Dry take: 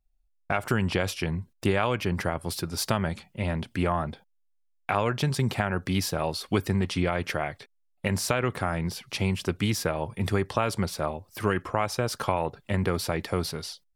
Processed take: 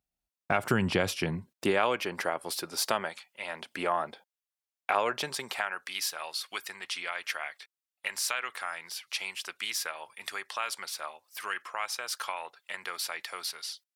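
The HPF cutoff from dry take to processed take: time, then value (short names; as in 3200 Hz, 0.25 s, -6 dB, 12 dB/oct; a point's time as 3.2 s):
1.15 s 130 Hz
2.08 s 440 Hz
3 s 440 Hz
3.24 s 1400 Hz
3.78 s 480 Hz
5.19 s 480 Hz
5.84 s 1400 Hz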